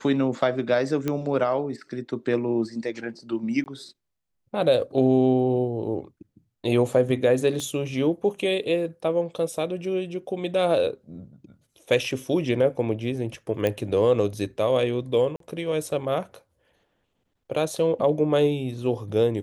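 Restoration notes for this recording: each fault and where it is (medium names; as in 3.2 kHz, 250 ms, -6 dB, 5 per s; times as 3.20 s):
1.08 s: pop -13 dBFS
3.64–3.66 s: dropout 19 ms
7.60 s: pop -19 dBFS
13.67 s: pop -12 dBFS
15.36–15.40 s: dropout 43 ms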